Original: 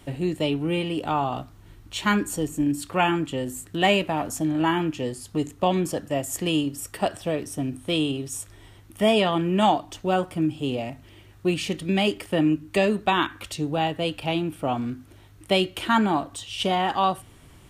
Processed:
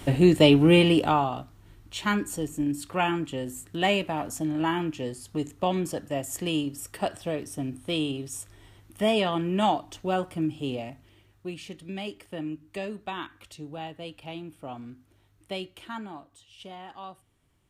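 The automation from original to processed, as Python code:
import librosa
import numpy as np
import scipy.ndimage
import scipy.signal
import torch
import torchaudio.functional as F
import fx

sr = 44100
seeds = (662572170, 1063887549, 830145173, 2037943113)

y = fx.gain(x, sr, db=fx.line((0.91, 8.0), (1.36, -4.0), (10.7, -4.0), (11.51, -13.0), (15.58, -13.0), (16.26, -19.5)))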